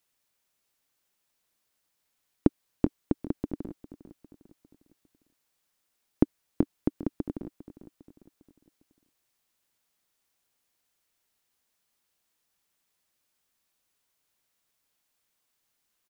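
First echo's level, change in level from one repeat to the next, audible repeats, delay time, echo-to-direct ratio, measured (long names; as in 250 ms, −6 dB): −16.0 dB, −6.5 dB, 3, 403 ms, −15.0 dB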